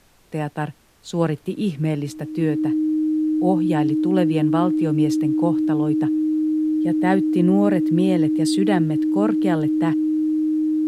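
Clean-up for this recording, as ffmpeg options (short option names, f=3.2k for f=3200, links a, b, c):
-af "bandreject=f=310:w=30,agate=range=-21dB:threshold=-26dB"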